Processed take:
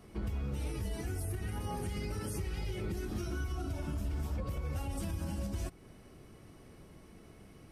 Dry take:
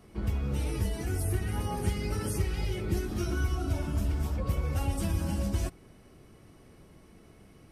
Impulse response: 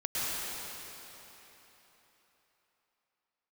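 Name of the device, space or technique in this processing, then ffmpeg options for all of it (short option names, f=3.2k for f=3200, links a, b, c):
stacked limiters: -af "alimiter=limit=-22.5dB:level=0:latency=1:release=88,alimiter=level_in=4.5dB:limit=-24dB:level=0:latency=1:release=230,volume=-4.5dB"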